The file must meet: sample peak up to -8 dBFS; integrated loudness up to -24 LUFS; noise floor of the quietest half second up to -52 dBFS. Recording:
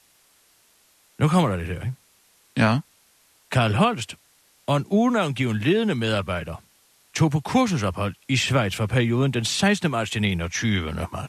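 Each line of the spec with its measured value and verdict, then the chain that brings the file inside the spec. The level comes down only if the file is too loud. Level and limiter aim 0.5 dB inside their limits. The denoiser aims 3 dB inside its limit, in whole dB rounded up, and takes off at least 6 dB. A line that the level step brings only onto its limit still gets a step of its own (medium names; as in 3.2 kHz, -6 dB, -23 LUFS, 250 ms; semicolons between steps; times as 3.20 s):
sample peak -6.5 dBFS: fail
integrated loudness -23.0 LUFS: fail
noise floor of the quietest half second -60 dBFS: pass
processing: trim -1.5 dB; peak limiter -8.5 dBFS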